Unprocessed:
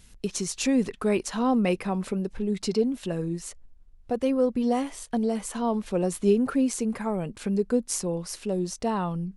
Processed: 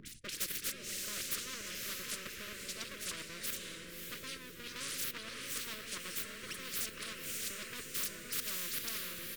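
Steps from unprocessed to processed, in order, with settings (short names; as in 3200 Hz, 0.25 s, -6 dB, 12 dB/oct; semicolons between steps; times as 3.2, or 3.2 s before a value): downsampling 22050 Hz; reverse; compressor 10:1, threshold -32 dBFS, peak gain reduction 16.5 dB; reverse; step gate "x.xxxx.xx..." 196 bpm -12 dB; dispersion highs, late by 61 ms, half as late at 1600 Hz; full-wave rectifier; Butterworth band-stop 790 Hz, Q 0.52; notches 50/100 Hz; on a send: diffused feedback echo 0.58 s, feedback 43%, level -8 dB; on the sum: spectral compressor 10:1; gain +1 dB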